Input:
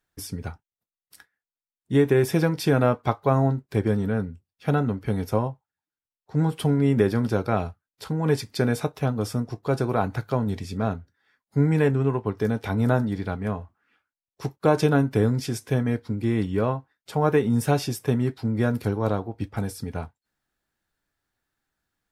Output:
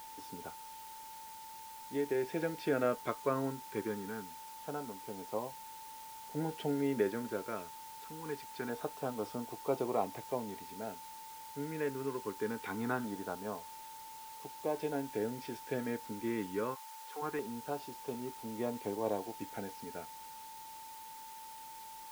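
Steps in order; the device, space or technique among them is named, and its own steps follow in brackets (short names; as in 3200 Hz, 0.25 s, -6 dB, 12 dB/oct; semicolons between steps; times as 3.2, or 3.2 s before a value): shortwave radio (BPF 330–2700 Hz; tremolo 0.31 Hz, depth 60%; LFO notch saw down 0.23 Hz 550–2300 Hz; whine 890 Hz -42 dBFS; white noise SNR 15 dB); 16.74–17.21 HPF 870 Hz -> 280 Hz 24 dB/oct; gain -6 dB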